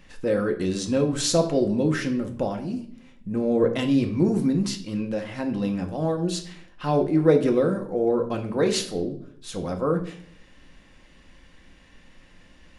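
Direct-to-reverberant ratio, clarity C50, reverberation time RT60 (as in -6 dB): 3.5 dB, 11.0 dB, 0.60 s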